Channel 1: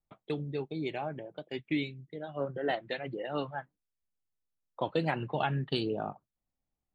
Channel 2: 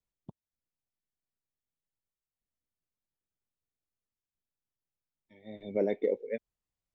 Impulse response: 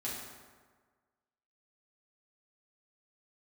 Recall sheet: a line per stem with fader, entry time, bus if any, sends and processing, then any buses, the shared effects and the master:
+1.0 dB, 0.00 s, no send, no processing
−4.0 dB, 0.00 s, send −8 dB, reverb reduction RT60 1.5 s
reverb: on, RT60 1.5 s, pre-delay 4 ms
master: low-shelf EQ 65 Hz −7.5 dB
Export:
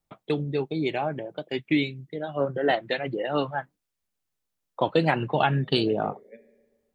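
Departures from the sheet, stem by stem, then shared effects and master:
stem 1 +1.0 dB → +8.5 dB
stem 2 −4.0 dB → −13.0 dB

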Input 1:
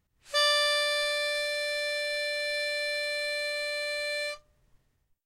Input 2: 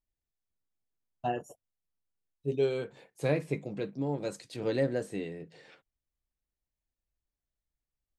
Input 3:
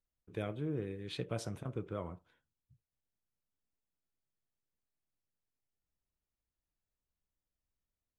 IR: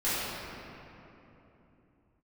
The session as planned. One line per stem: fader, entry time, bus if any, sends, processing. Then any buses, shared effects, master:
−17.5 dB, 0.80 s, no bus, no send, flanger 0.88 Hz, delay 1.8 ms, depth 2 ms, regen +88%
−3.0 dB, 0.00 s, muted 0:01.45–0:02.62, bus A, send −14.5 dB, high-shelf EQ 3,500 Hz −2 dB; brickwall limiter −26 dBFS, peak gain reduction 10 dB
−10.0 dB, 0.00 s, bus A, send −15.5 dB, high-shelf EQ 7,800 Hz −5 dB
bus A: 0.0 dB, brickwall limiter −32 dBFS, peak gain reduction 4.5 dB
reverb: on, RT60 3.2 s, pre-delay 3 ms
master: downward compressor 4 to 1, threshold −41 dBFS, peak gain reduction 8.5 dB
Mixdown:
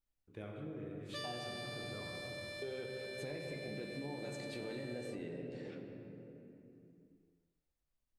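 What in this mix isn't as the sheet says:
stem 1 −17.5 dB → −10.0 dB
stem 3: send −15.5 dB → −9 dB

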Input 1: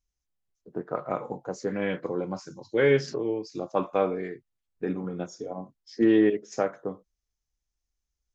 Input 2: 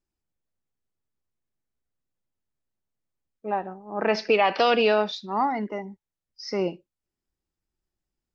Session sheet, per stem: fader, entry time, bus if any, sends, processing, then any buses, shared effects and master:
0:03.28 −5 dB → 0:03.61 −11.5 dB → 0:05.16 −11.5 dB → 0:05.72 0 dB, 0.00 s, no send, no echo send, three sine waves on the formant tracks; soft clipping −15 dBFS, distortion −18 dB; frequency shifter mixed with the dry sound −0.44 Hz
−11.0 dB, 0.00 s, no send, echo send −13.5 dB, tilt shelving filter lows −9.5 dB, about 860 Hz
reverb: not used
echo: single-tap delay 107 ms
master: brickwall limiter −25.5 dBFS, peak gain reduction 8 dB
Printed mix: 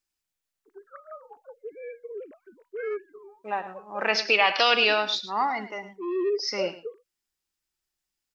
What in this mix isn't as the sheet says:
stem 2 −11.0 dB → −1.5 dB
master: missing brickwall limiter −25.5 dBFS, peak gain reduction 8 dB

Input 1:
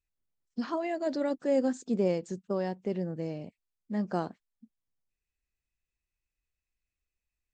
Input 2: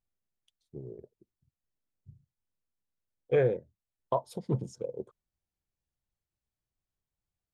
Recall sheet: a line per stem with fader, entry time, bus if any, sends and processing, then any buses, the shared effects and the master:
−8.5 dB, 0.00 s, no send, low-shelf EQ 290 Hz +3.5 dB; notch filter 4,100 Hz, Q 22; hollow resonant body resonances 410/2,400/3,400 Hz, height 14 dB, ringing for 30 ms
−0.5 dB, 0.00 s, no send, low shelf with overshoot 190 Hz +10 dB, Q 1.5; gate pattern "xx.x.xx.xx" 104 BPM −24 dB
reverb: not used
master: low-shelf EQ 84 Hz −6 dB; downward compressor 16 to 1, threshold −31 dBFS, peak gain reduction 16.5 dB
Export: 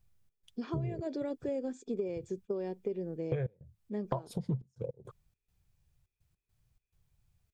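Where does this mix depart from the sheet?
stem 2 −0.5 dB → +9.0 dB
master: missing low-shelf EQ 84 Hz −6 dB

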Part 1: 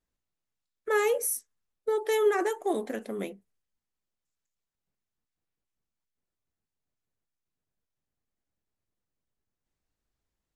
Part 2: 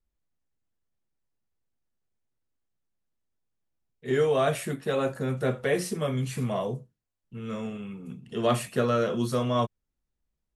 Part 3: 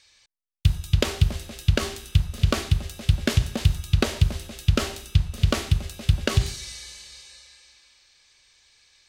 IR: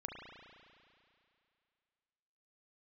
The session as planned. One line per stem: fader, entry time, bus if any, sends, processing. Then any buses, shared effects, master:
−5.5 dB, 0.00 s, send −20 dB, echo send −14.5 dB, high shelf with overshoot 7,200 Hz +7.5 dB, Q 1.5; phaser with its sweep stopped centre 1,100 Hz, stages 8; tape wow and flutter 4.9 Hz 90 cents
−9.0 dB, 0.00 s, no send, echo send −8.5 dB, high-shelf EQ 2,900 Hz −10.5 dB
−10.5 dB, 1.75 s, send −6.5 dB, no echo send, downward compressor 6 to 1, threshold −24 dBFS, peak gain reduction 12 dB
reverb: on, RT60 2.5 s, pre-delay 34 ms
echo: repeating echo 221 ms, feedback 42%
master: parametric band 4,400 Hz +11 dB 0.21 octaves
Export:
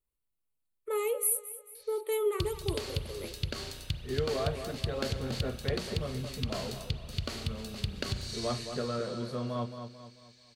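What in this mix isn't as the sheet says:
stem 1: missing tape wow and flutter 4.9 Hz 90 cents
stem 3: send −6.5 dB → −0.5 dB

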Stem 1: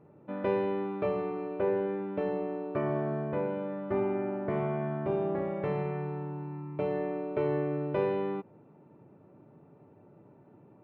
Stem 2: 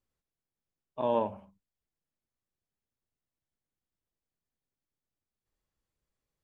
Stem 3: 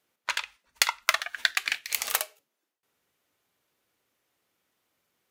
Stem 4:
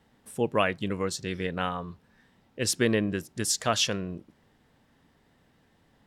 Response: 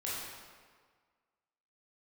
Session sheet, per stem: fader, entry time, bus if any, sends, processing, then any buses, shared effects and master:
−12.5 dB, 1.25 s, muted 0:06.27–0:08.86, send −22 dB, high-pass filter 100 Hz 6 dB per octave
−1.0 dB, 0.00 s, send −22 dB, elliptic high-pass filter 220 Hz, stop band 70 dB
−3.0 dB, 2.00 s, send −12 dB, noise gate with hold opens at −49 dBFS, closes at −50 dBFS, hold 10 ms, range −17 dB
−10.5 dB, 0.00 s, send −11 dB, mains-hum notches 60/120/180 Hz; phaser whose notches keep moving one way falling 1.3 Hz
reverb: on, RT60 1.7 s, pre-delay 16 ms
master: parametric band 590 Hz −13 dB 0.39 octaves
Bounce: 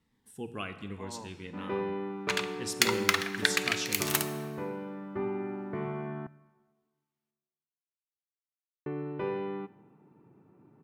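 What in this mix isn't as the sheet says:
stem 1 −12.5 dB → −2.0 dB
stem 2 −1.0 dB → −12.5 dB

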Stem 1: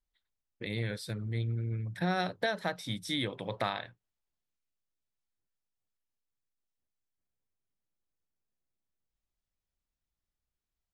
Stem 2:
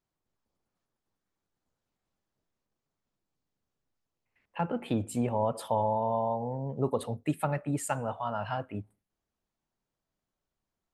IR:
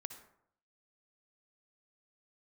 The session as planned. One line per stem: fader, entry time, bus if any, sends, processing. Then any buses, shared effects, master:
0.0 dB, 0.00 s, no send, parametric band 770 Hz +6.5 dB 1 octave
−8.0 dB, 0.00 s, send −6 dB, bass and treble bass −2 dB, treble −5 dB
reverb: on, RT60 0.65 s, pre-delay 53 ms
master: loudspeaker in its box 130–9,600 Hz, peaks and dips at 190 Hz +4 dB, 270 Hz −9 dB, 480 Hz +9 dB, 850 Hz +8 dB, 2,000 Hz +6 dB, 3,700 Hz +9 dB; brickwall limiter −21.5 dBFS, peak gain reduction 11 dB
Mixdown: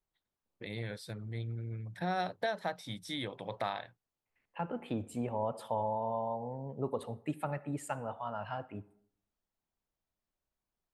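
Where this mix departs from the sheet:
stem 1 0.0 dB → −6.0 dB
master: missing loudspeaker in its box 130–9,600 Hz, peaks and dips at 190 Hz +4 dB, 270 Hz −9 dB, 480 Hz +9 dB, 850 Hz +8 dB, 2,000 Hz +6 dB, 3,700 Hz +9 dB

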